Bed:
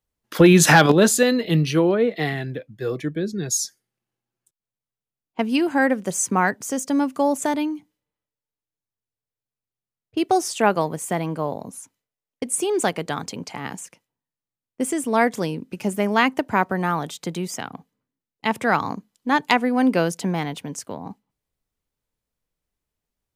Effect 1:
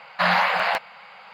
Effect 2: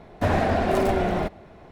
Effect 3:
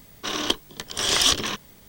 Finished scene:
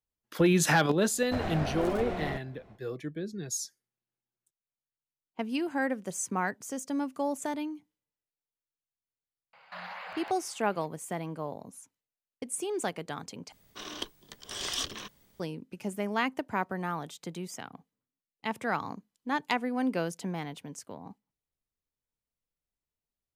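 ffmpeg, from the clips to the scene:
-filter_complex "[0:a]volume=0.282[s0];[2:a]aeval=exprs='clip(val(0),-1,0.0531)':c=same[s1];[1:a]alimiter=limit=0.1:level=0:latency=1:release=87[s2];[s0]asplit=2[s3][s4];[s3]atrim=end=13.524[s5];[3:a]atrim=end=1.88,asetpts=PTS-STARTPTS,volume=0.2[s6];[s4]atrim=start=15.396[s7];[s1]atrim=end=1.71,asetpts=PTS-STARTPTS,volume=0.335,afade=t=in:d=0.1,afade=t=out:st=1.61:d=0.1,adelay=1100[s8];[s2]atrim=end=1.33,asetpts=PTS-STARTPTS,volume=0.211,afade=t=in:d=0.004:c=hsin,afade=t=out:st=1.326:d=0.004:c=hsin,adelay=9530[s9];[s5][s6]acrossfade=d=0.004:c1=hsin:c2=hsin[s10];[s10][s7]acrossfade=d=0.004:c1=hsin:c2=hsin[s11];[s11][s8][s9]amix=inputs=3:normalize=0"

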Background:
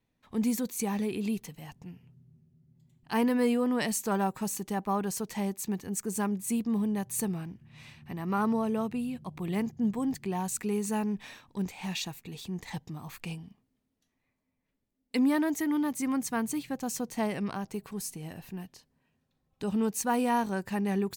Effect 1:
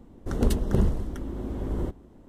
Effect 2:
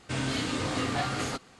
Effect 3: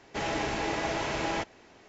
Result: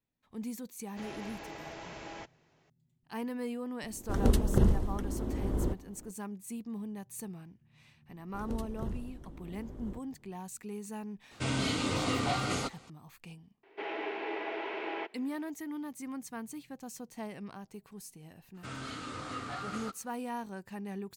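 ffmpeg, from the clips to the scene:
-filter_complex "[3:a]asplit=2[s0][s1];[1:a]asplit=2[s2][s3];[2:a]asplit=2[s4][s5];[0:a]volume=0.282[s6];[s4]asuperstop=centerf=1700:order=4:qfactor=6.2[s7];[s1]highpass=f=360:w=0.5412,highpass=f=360:w=1.3066,equalizer=f=390:t=q:w=4:g=7,equalizer=f=550:t=q:w=4:g=-9,equalizer=f=790:t=q:w=4:g=-3,equalizer=f=1200:t=q:w=4:g=-6,equalizer=f=1700:t=q:w=4:g=-4,lowpass=f=2800:w=0.5412,lowpass=f=2800:w=1.3066[s8];[s5]equalizer=f=1300:t=o:w=0.26:g=13.5[s9];[s0]atrim=end=1.88,asetpts=PTS-STARTPTS,volume=0.2,afade=t=in:d=0.004:c=hsin,afade=t=out:st=1.876:d=0.004:c=hsin,adelay=820[s10];[s2]atrim=end=2.28,asetpts=PTS-STARTPTS,volume=0.794,afade=t=in:d=0.004:c=hsin,afade=t=out:st=2.276:d=0.004:c=hsin,adelay=3830[s11];[s3]atrim=end=2.28,asetpts=PTS-STARTPTS,volume=0.168,afade=t=in:d=0.004:c=hsin,afade=t=out:st=2.276:d=0.004:c=hsin,adelay=8080[s12];[s7]atrim=end=1.59,asetpts=PTS-STARTPTS,volume=0.891,afade=t=in:d=0.004:c=hsin,afade=t=out:st=1.586:d=0.004:c=hsin,adelay=11310[s13];[s8]atrim=end=1.88,asetpts=PTS-STARTPTS,volume=0.708,afade=t=in:d=0.004:c=hsin,afade=t=out:st=1.876:d=0.004:c=hsin,adelay=13630[s14];[s9]atrim=end=1.59,asetpts=PTS-STARTPTS,volume=0.237,afade=t=in:d=0.02,afade=t=out:st=1.57:d=0.02,adelay=18540[s15];[s6][s10][s11][s12][s13][s14][s15]amix=inputs=7:normalize=0"

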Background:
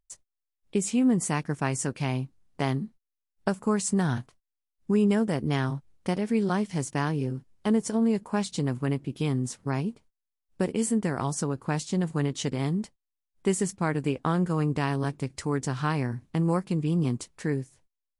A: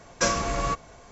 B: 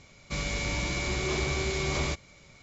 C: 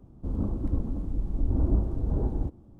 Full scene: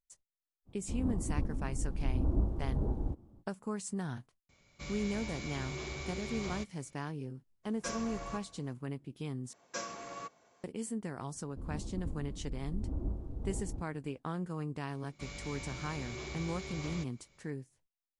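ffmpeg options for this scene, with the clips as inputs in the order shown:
-filter_complex "[3:a]asplit=2[s0][s1];[2:a]asplit=2[s2][s3];[1:a]asplit=2[s4][s5];[0:a]volume=0.237[s6];[s0]equalizer=f=950:w=1.5:g=2[s7];[s4]aecho=1:1:71|142|213|284|355:0.141|0.0763|0.0412|0.0222|0.012[s8];[s5]highpass=210[s9];[s6]asplit=2[s10][s11];[s10]atrim=end=9.534[s12];[s9]atrim=end=1.11,asetpts=PTS-STARTPTS,volume=0.158[s13];[s11]atrim=start=10.636[s14];[s7]atrim=end=2.79,asetpts=PTS-STARTPTS,volume=0.501,afade=t=in:d=0.05,afade=t=out:st=2.74:d=0.05,adelay=650[s15];[s2]atrim=end=2.62,asetpts=PTS-STARTPTS,volume=0.251,afade=t=in:d=0.004:c=hsin,afade=t=out:st=2.616:d=0.004:c=hsin,adelay=198009S[s16];[s8]atrim=end=1.11,asetpts=PTS-STARTPTS,volume=0.158,afade=t=in:d=0.02,afade=t=out:st=1.09:d=0.02,adelay=7630[s17];[s1]atrim=end=2.79,asetpts=PTS-STARTPTS,volume=0.251,afade=t=in:d=0.004:c=hsin,afade=t=out:st=2.786:d=0.004:c=hsin,adelay=11330[s18];[s3]atrim=end=2.62,asetpts=PTS-STARTPTS,volume=0.211,afade=t=in:d=0.004:c=hsin,afade=t=out:st=2.616:d=0.004:c=hsin,adelay=14890[s19];[s12][s13]acrossfade=d=0.004:c1=hsin:c2=hsin[s20];[s20][s14]acrossfade=d=0.004:c1=hsin:c2=hsin[s21];[s21][s15][s16][s17][s18][s19]amix=inputs=6:normalize=0"

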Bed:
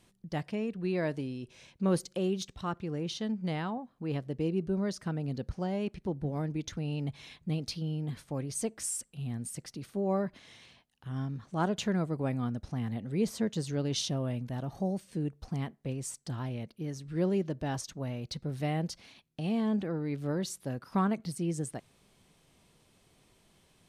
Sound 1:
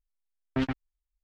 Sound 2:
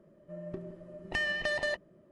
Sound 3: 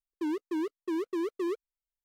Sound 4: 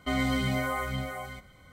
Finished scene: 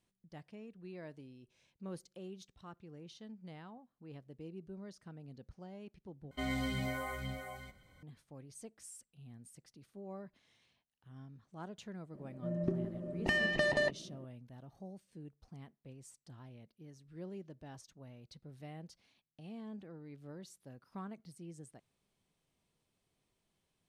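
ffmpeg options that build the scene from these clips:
-filter_complex "[0:a]volume=0.141[s0];[4:a]bandreject=f=1200:w=6[s1];[2:a]equalizer=f=220:w=0.62:g=11[s2];[s0]asplit=2[s3][s4];[s3]atrim=end=6.314[s5];[s1]atrim=end=1.72,asetpts=PTS-STARTPTS,volume=0.376[s6];[s4]atrim=start=8.026[s7];[s2]atrim=end=2.11,asetpts=PTS-STARTPTS,volume=0.841,afade=t=in:d=0.004:c=hsin,afade=t=out:st=2.106:d=0.004:c=hsin,adelay=12140[s8];[s5][s6]acrossfade=d=0.004:c1=hsin:c2=hsin[s9];[s9][s7]acrossfade=d=0.004:c1=hsin:c2=hsin[s10];[s10][s8]amix=inputs=2:normalize=0"

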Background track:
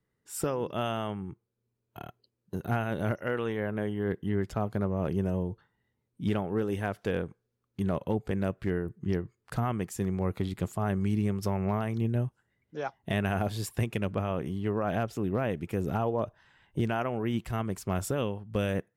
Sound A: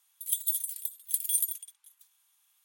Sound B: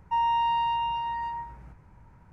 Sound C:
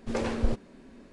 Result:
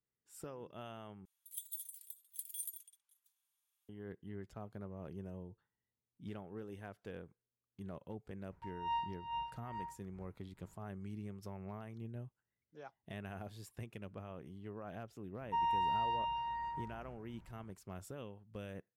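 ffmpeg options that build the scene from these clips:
-filter_complex "[2:a]asplit=2[s0][s1];[0:a]volume=0.133[s2];[s0]aeval=exprs='val(0)*pow(10,-19*(0.5-0.5*cos(2*PI*2.3*n/s))/20)':c=same[s3];[s2]asplit=2[s4][s5];[s4]atrim=end=1.254[s6];[1:a]atrim=end=2.64,asetpts=PTS-STARTPTS,volume=0.158[s7];[s5]atrim=start=3.886[s8];[s3]atrim=end=2.32,asetpts=PTS-STARTPTS,volume=0.335,afade=t=in:d=0.004:c=hsin,afade=t=out:st=2.316:d=0.004:c=hsin,adelay=8510[s9];[s1]atrim=end=2.32,asetpts=PTS-STARTPTS,volume=0.355,afade=t=in:d=0.004:c=hsin,afade=t=out:st=2.316:d=0.004:c=hsin,adelay=15410[s10];[s6][s7]acrossfade=d=0.004:c1=hsin:c2=hsin[s11];[s11][s8]acrossfade=d=0.004:c1=hsin:c2=hsin[s12];[s12][s9][s10]amix=inputs=3:normalize=0"

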